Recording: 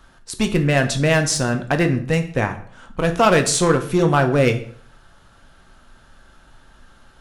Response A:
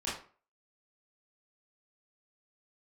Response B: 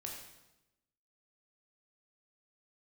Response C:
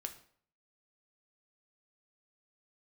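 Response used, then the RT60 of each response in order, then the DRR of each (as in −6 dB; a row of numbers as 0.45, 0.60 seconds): C; 0.40, 0.95, 0.55 seconds; −9.5, −1.0, 5.5 decibels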